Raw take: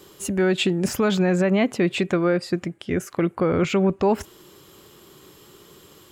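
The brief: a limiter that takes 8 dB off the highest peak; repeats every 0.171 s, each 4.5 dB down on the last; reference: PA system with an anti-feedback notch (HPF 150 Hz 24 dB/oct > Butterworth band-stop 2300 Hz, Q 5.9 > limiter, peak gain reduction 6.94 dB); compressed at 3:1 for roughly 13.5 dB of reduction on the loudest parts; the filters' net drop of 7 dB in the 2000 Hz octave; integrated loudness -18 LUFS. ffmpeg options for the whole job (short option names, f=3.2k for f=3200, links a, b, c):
-af "equalizer=f=2k:t=o:g=-8.5,acompressor=threshold=-35dB:ratio=3,alimiter=level_in=4dB:limit=-24dB:level=0:latency=1,volume=-4dB,highpass=f=150:w=0.5412,highpass=f=150:w=1.3066,asuperstop=centerf=2300:order=8:qfactor=5.9,aecho=1:1:171|342|513|684|855|1026|1197|1368|1539:0.596|0.357|0.214|0.129|0.0772|0.0463|0.0278|0.0167|0.01,volume=21.5dB,alimiter=limit=-8dB:level=0:latency=1"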